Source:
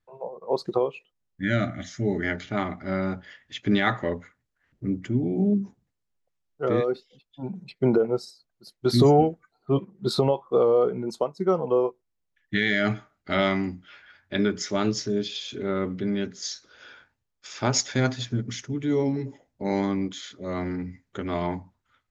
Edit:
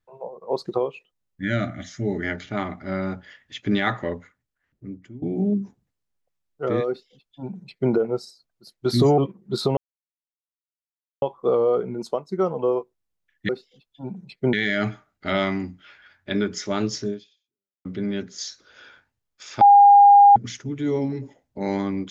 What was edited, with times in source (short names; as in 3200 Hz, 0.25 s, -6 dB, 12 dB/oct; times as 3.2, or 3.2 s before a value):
4.04–5.22 fade out, to -18.5 dB
6.88–7.92 copy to 12.57
9.18–9.71 cut
10.3 insert silence 1.45 s
15.13–15.89 fade out exponential
17.65–18.4 bleep 810 Hz -7.5 dBFS